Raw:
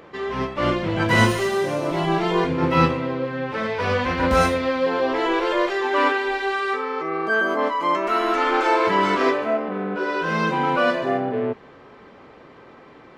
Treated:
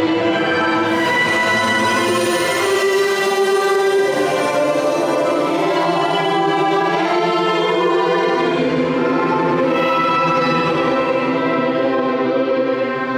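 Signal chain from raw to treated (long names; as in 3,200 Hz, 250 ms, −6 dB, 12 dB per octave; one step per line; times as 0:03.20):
high-pass filter 290 Hz 12 dB per octave
extreme stretch with random phases 5.4×, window 0.10 s, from 0:00.90
boost into a limiter +18 dB
level −7 dB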